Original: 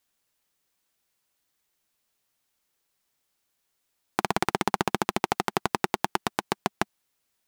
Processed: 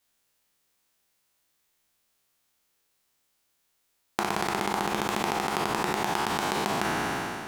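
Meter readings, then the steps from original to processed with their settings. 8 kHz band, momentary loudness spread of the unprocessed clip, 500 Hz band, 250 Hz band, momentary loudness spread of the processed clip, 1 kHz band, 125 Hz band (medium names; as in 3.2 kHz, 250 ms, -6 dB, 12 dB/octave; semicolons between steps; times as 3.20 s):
+2.0 dB, 5 LU, +0.5 dB, +0.5 dB, 2 LU, +1.0 dB, 0.0 dB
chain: spectral sustain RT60 2.04 s; compression 5:1, threshold -24 dBFS, peak gain reduction 9 dB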